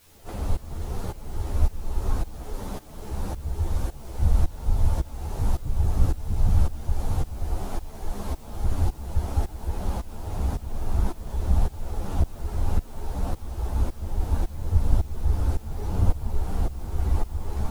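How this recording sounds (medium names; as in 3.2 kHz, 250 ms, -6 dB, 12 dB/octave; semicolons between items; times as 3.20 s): tremolo saw up 1.8 Hz, depth 95%; a quantiser's noise floor 10-bit, dither triangular; a shimmering, thickened sound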